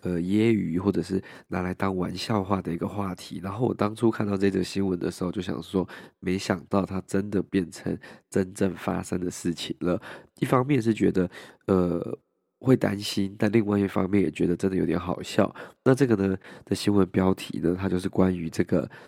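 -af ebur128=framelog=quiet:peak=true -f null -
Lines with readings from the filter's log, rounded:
Integrated loudness:
  I:         -26.5 LUFS
  Threshold: -36.6 LUFS
Loudness range:
  LRA:         3.9 LU
  Threshold: -46.7 LUFS
  LRA low:   -28.9 LUFS
  LRA high:  -25.0 LUFS
True peak:
  Peak:       -5.6 dBFS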